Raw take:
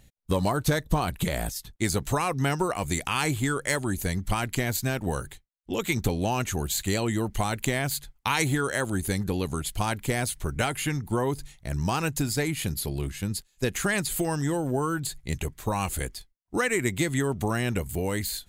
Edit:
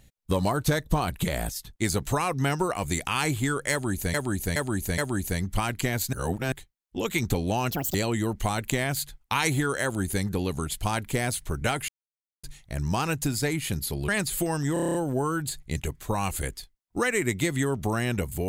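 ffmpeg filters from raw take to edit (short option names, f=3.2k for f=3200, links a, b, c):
-filter_complex "[0:a]asplit=18[a][b][c][d][e][f][g][h][i][j][k][l][m][n][o][p][q][r];[a]atrim=end=4.142[s];[b]atrim=start=3.718:end=4.142[t];[c]atrim=start=3.718:end=4.142[u];[d]atrim=start=3.718:end=4.872[v];[e]atrim=start=4.868:end=5.262,asetpts=PTS-STARTPTS,areverse[w];[f]atrim=start=5.258:end=6.454[x];[g]atrim=start=6.45:end=6.89,asetpts=PTS-STARTPTS,asetrate=82908,aresample=44100,atrim=end_sample=10321,asetpts=PTS-STARTPTS[y];[h]atrim=start=6.886:end=10.83,asetpts=PTS-STARTPTS,afade=t=out:st=3.94:d=0.004:c=hsin[z];[i]atrim=start=10.83:end=11.38,asetpts=PTS-STARTPTS,volume=0[aa];[j]atrim=start=11.38:end=13.032,asetpts=PTS-STARTPTS,afade=t=in:d=0.004:c=hsin[ab];[k]atrim=start=13.868:end=14.552[ac];[l]atrim=start=14.518:end=14.552[ad];[m]atrim=start=14.518:end=14.552[ae];[n]atrim=start=14.518:end=14.552[af];[o]atrim=start=14.518:end=14.552[ag];[p]atrim=start=14.518:end=14.552[ah];[q]atrim=start=14.518:end=14.552[ai];[r]atrim=start=14.518[aj];[s][t]acrossfade=d=0.004:c1=hsin:c2=hsin[ak];[ak][u]acrossfade=d=0.004:c1=hsin:c2=hsin[al];[al][v]acrossfade=d=0.004:c1=hsin:c2=hsin[am];[am][w]acrossfade=d=0.004:c1=hsin:c2=hsin[an];[an][x]acrossfade=d=0.004:c1=hsin:c2=hsin[ao];[ao][y]acrossfade=d=0.004:c1=hsin:c2=hsin[ap];[z][aa][ab]concat=n=3:v=0:a=1[aq];[ap][aq]acrossfade=d=0.004:c1=hsin:c2=hsin[ar];[ar][ac]acrossfade=d=0.004:c1=hsin:c2=hsin[as];[as][ad]acrossfade=d=0.004:c1=hsin:c2=hsin[at];[at][ae]acrossfade=d=0.004:c1=hsin:c2=hsin[au];[au][af]acrossfade=d=0.004:c1=hsin:c2=hsin[av];[av][ag]acrossfade=d=0.004:c1=hsin:c2=hsin[aw];[aw][ah]acrossfade=d=0.004:c1=hsin:c2=hsin[ax];[ax][ai]acrossfade=d=0.004:c1=hsin:c2=hsin[ay];[ay][aj]acrossfade=d=0.004:c1=hsin:c2=hsin"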